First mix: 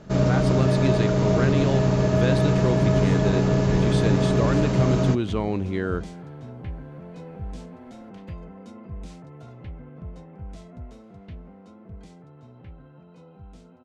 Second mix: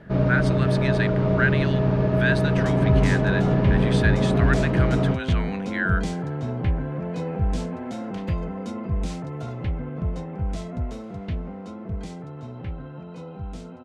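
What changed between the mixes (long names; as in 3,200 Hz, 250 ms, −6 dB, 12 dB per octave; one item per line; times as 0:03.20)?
speech: add high-pass with resonance 1,600 Hz, resonance Q 4.4
first sound: add high-frequency loss of the air 340 metres
second sound +11.0 dB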